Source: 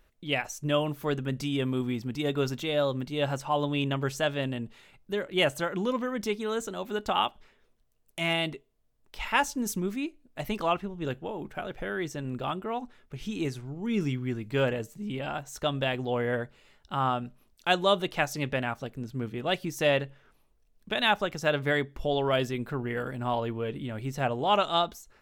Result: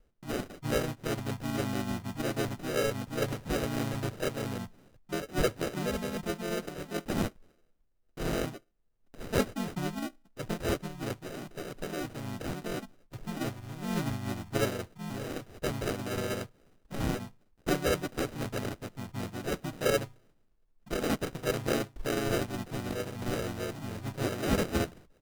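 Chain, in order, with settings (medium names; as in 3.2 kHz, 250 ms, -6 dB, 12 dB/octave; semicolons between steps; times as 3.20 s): treble shelf 8.4 kHz -7.5 dB; sample-and-hold 40×; harmony voices -4 st 0 dB; trim -6.5 dB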